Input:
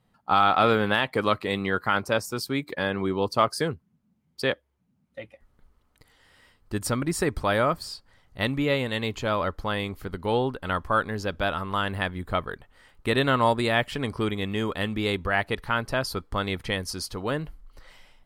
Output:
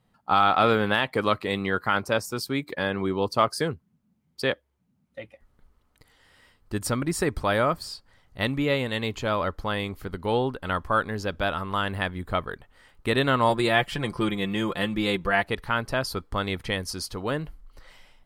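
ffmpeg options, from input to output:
-filter_complex "[0:a]asettb=1/sr,asplit=3[a][b][c];[a]atrim=end=13.494[d];[b]atrim=start=13.49:end=15.43,asetpts=PTS-STARTPTS,afade=t=in:d=0.004:c=qsin,afade=t=out:st=1.936:d=0.004:c=qsin,aecho=1:1:5.8:0.65,atrim=end_sample=85554[e];[c]atrim=start=15.426[f];[d][e]acrossfade=d=0.004:c1=hsin:c2=qsin[g];[g][f]acrossfade=d=0.004:c1=qsin:c2=hsin"

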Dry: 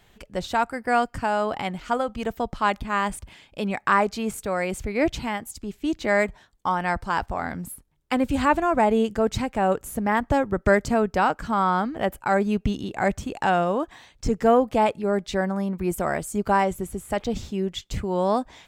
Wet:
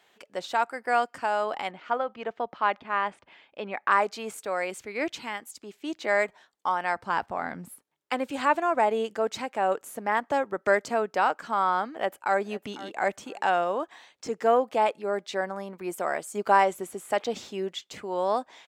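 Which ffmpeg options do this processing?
-filter_complex "[0:a]asettb=1/sr,asplit=3[a][b][c];[a]atrim=end=1.714[d];[b]atrim=start=1.71:end=3.91,asetpts=PTS-STARTPTS,afade=t=in:d=0.004:c=qsin,afade=t=out:st=2.196:d=0.004:c=qsin,lowpass=2.9k[e];[c]atrim=start=3.906[f];[d][e]acrossfade=d=0.004:c1=hsin:c2=qsin[g];[g][f]acrossfade=d=0.004:c1=qsin:c2=hsin,asettb=1/sr,asplit=3[h][i][j];[h]atrim=end=4.704[k];[i]atrim=start=4.7:end=5.56,asetpts=PTS-STARTPTS,afade=t=in:d=0.004:c=qsin,afade=t=out:st=0.856:d=0.004:c=qsin,equalizer=f=680:w=1.5:g=-6[l];[j]atrim=start=5.556[m];[k][l]acrossfade=d=0.004:c1=hsin:c2=qsin[n];[n][m]acrossfade=d=0.004:c1=qsin:c2=hsin,asettb=1/sr,asplit=3[o][p][q];[o]atrim=end=6.984[r];[p]atrim=start=6.98:end=7.72,asetpts=PTS-STARTPTS,afade=t=in:d=0.004:c=qsin,afade=t=out:st=0.736:d=0.004:c=qsin,bass=f=250:g=12,treble=f=4k:g=-5[s];[q]atrim=start=7.716[t];[r][s]acrossfade=d=0.004:c1=hsin:c2=qsin[u];[u][t]acrossfade=d=0.004:c1=qsin:c2=hsin,asplit=2[v][w];[w]afade=t=in:st=11.91:d=0.01,afade=t=out:st=12.41:d=0.01,aecho=0:1:500|1000:0.141254|0.0282508[x];[v][x]amix=inputs=2:normalize=0,asplit=3[y][z][aa];[y]atrim=end=16.352[ab];[z]atrim=start=16.348:end=17.732,asetpts=PTS-STARTPTS,volume=3.5dB[ac];[aa]atrim=start=17.728[ad];[ab][ac]acrossfade=d=0.004:c1=hsin:c2=hsin[ae];[ae][ad]acrossfade=d=0.004:c1=hsin:c2=hsin,highpass=420,highshelf=f=9.1k:g=-7,volume=-2dB"

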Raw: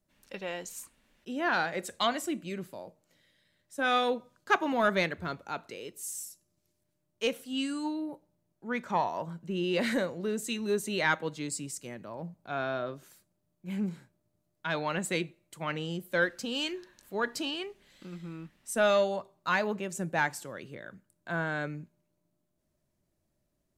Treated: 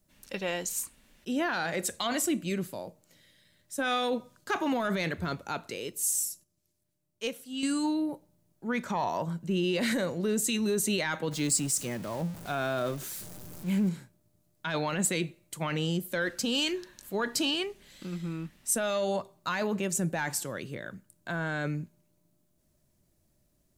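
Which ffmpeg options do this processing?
-filter_complex "[0:a]asettb=1/sr,asplit=3[a][b][c];[a]atrim=end=11.314[d];[b]atrim=start=11.31:end=13.88,asetpts=PTS-STARTPTS,afade=t=in:d=0.004:c=qsin,afade=t=out:st=2.566:d=0.004:c=qsin,aeval=exprs='val(0)+0.5*0.00501*sgn(val(0))':c=same[e];[c]atrim=start=13.876[f];[d][e]acrossfade=d=0.004:c1=hsin:c2=qsin[g];[g][f]acrossfade=d=0.004:c1=qsin:c2=hsin,asplit=3[h][i][j];[h]atrim=end=6.44,asetpts=PTS-STARTPTS,afade=t=out:st=6.27:d=0.17:c=log:silence=0.354813[k];[i]atrim=start=6.44:end=7.63,asetpts=PTS-STARTPTS,volume=-9dB[l];[j]atrim=start=7.63,asetpts=PTS-STARTPTS,afade=t=in:d=0.17:c=log:silence=0.354813[m];[k][l][m]concat=n=3:v=0:a=1,lowshelf=f=270:g=5.5,alimiter=level_in=0.5dB:limit=-24dB:level=0:latency=1:release=13,volume=-0.5dB,highshelf=f=4k:g=8.5,volume=3dB"

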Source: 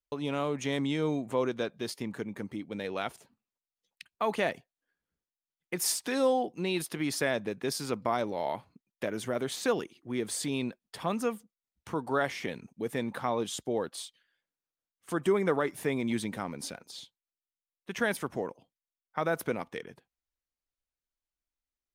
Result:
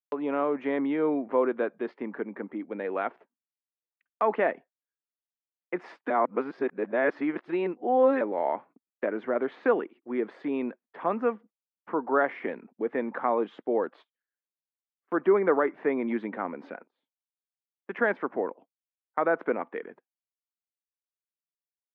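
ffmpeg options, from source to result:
-filter_complex "[0:a]asplit=3[a][b][c];[a]atrim=end=6.102[d];[b]atrim=start=6.098:end=8.212,asetpts=PTS-STARTPTS,areverse[e];[c]atrim=start=8.208[f];[d][e]acrossfade=d=0.004:c1=hsin:c2=hsin[g];[g][f]acrossfade=d=0.004:c1=hsin:c2=hsin,lowpass=f=1.9k:w=0.5412,lowpass=f=1.9k:w=1.3066,agate=range=-23dB:threshold=-52dB:ratio=16:detection=peak,highpass=f=250:w=0.5412,highpass=f=250:w=1.3066,volume=5dB"

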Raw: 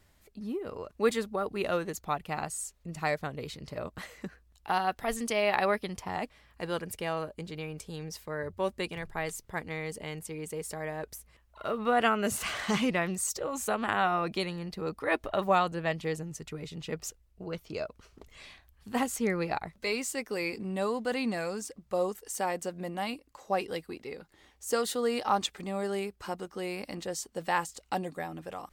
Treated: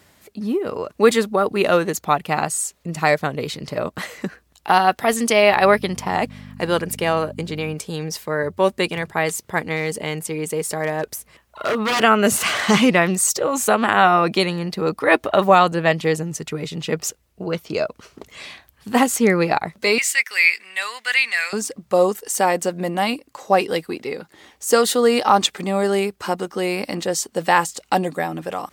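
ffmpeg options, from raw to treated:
-filter_complex "[0:a]asettb=1/sr,asplit=3[a][b][c];[a]atrim=end=5.514[d];[b]atrim=start=5.51:end=7.74,asetpts=PTS-STARTPTS,afade=t=in:d=0.004:c=qsin,afade=t=out:st=2.226:d=0.004:c=qsin,aeval=exprs='val(0)+0.00708*(sin(2*PI*50*n/s)+sin(2*PI*2*50*n/s)/2+sin(2*PI*3*50*n/s)/3+sin(2*PI*4*50*n/s)/4+sin(2*PI*5*50*n/s)/5)':c=same[e];[c]atrim=start=7.736[f];[d][e]acrossfade=d=0.004:c1=hsin:c2=qsin[g];[g][f]acrossfade=d=0.004:c1=qsin:c2=hsin,asettb=1/sr,asplit=3[h][i][j];[h]atrim=end=9.764[k];[i]atrim=start=9.76:end=12.01,asetpts=PTS-STARTPTS,afade=t=in:d=0.004:c=qsin,afade=t=out:st=2.246:d=0.004:c=qsin,aeval=exprs='0.0422*(abs(mod(val(0)/0.0422+3,4)-2)-1)':c=same[l];[j]atrim=start=12.006[m];[k][l]acrossfade=d=0.004:c1=hsin:c2=qsin[n];[n][m]acrossfade=d=0.004:c1=qsin:c2=hsin,asettb=1/sr,asplit=3[o][p][q];[o]atrim=end=19.984[r];[p]atrim=start=19.98:end=21.53,asetpts=PTS-STARTPTS,afade=t=in:d=0.004:c=qsin,afade=t=out:st=1.546:d=0.004:c=qsin,highpass=f=2k:t=q:w=3[s];[q]atrim=start=21.526[t];[r][s]acrossfade=d=0.004:c1=hsin:c2=qsin[u];[u][t]acrossfade=d=0.004:c1=qsin:c2=hsin,highpass=130,alimiter=level_in=14.5dB:limit=-1dB:release=50:level=0:latency=1,volume=-1dB"

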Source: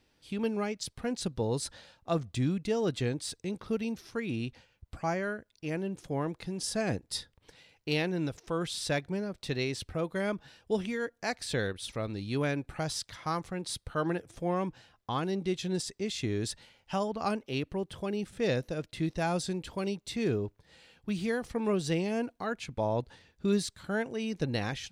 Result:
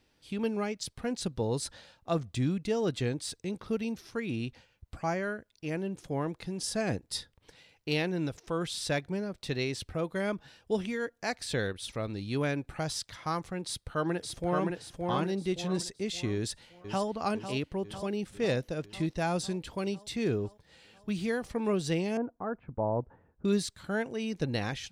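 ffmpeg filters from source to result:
-filter_complex "[0:a]asplit=2[a][b];[b]afade=t=in:st=13.65:d=0.01,afade=t=out:st=14.68:d=0.01,aecho=0:1:570|1140|1710|2280|2850:0.707946|0.283178|0.113271|0.0453085|0.0181234[c];[a][c]amix=inputs=2:normalize=0,asplit=2[d][e];[e]afade=t=in:st=16.34:d=0.01,afade=t=out:st=17.07:d=0.01,aecho=0:1:500|1000|1500|2000|2500|3000|3500|4000|4500|5000:0.316228|0.221359|0.154952|0.108466|0.0759263|0.0531484|0.0372039|0.0260427|0.0182299|0.0127609[f];[d][f]amix=inputs=2:normalize=0,asettb=1/sr,asplit=3[g][h][i];[g]atrim=end=22.174[j];[h]atrim=start=22.17:end=23.45,asetpts=PTS-STARTPTS,afade=t=in:d=0.004:c=qsin,afade=t=out:st=1.276:d=0.004:c=qsin,lowpass=f=1.3k:w=0.5412,lowpass=f=1.3k:w=1.3066[k];[i]atrim=start=23.446[l];[j][k]acrossfade=d=0.004:c1=hsin:c2=qsin[m];[m][l]acrossfade=d=0.004:c1=qsin:c2=hsin"

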